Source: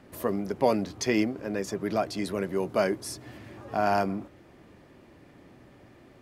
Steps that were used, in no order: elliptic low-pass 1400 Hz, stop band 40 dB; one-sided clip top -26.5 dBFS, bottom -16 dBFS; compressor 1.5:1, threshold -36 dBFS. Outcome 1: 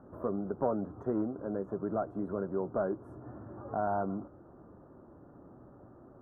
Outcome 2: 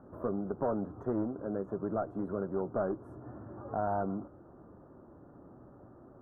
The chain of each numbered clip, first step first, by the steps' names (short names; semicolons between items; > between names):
compressor > one-sided clip > elliptic low-pass; one-sided clip > compressor > elliptic low-pass